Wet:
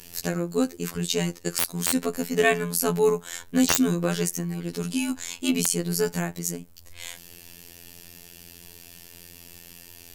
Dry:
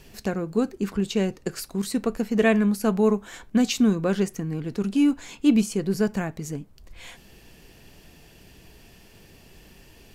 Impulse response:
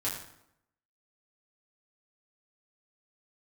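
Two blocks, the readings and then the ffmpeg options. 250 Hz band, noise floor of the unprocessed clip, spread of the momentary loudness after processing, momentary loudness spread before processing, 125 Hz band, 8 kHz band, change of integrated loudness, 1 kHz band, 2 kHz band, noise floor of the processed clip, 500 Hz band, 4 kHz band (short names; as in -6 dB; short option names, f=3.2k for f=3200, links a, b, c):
-4.5 dB, -52 dBFS, 22 LU, 10 LU, 0.0 dB, +9.5 dB, -1.0 dB, +1.0 dB, +2.5 dB, -49 dBFS, 0.0 dB, +4.5 dB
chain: -af "crystalizer=i=3.5:c=0,afftfilt=real='hypot(re,im)*cos(PI*b)':imag='0':win_size=2048:overlap=0.75,aeval=exprs='(mod(1.41*val(0)+1,2)-1)/1.41':c=same,volume=2dB"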